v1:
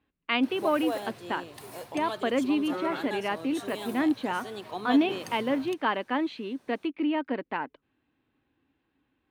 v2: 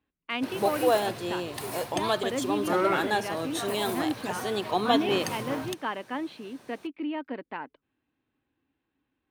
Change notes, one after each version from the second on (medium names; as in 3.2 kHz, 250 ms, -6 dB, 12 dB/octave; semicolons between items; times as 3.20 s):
speech -5.0 dB; background +9.5 dB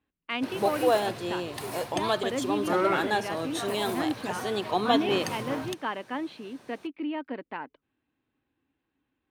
background: add treble shelf 11 kHz -6.5 dB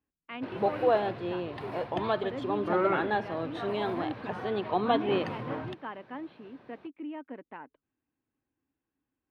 speech -6.0 dB; master: add distance through air 390 m